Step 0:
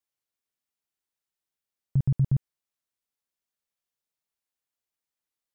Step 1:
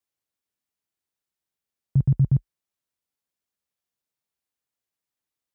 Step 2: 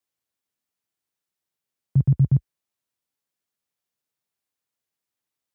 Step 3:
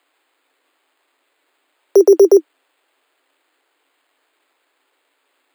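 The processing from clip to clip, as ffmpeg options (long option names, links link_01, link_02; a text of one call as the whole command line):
ffmpeg -i in.wav -af "highpass=frequency=41:width=0.5412,highpass=frequency=41:width=1.3066,lowshelf=frequency=470:gain=4.5" out.wav
ffmpeg -i in.wav -af "highpass=frequency=72:width=0.5412,highpass=frequency=72:width=1.3066,volume=1.5dB" out.wav
ffmpeg -i in.wav -af "acrusher=samples=8:mix=1:aa=0.000001,afreqshift=260,alimiter=level_in=21dB:limit=-1dB:release=50:level=0:latency=1,volume=-1dB" out.wav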